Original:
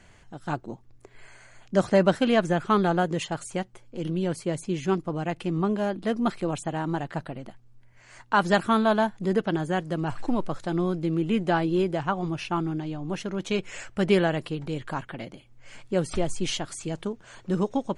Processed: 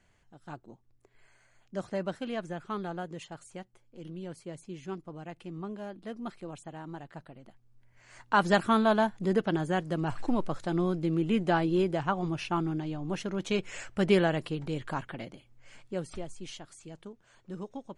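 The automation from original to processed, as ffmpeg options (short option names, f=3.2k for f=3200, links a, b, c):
-af "volume=-2.5dB,afade=t=in:st=7.4:d=0.95:silence=0.281838,afade=t=out:st=15.04:d=1.26:silence=0.251189"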